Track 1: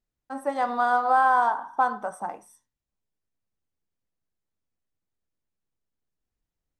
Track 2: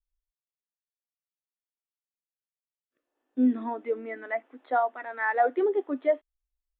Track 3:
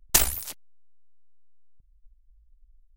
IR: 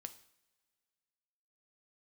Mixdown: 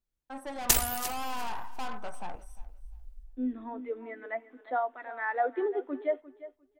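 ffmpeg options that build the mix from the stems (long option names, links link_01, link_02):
-filter_complex "[0:a]aeval=exprs='(tanh(39.8*val(0)+0.55)-tanh(0.55))/39.8':channel_layout=same,volume=-3dB,asplit=3[link_01][link_02][link_03];[link_02]volume=-20.5dB[link_04];[1:a]volume=-6.5dB,asplit=3[link_05][link_06][link_07];[link_06]volume=-10dB[link_08];[link_07]volume=-14.5dB[link_09];[2:a]dynaudnorm=framelen=120:gausssize=7:maxgain=16.5dB,adelay=550,volume=-4dB,asplit=2[link_10][link_11];[link_11]volume=-17.5dB[link_12];[link_03]apad=whole_len=299777[link_13];[link_05][link_13]sidechaincompress=threshold=-53dB:ratio=8:attack=16:release=1460[link_14];[3:a]atrim=start_sample=2205[link_15];[link_08][link_15]afir=irnorm=-1:irlink=0[link_16];[link_04][link_09][link_12]amix=inputs=3:normalize=0,aecho=0:1:350|700|1050:1|0.18|0.0324[link_17];[link_01][link_14][link_10][link_16][link_17]amix=inputs=5:normalize=0"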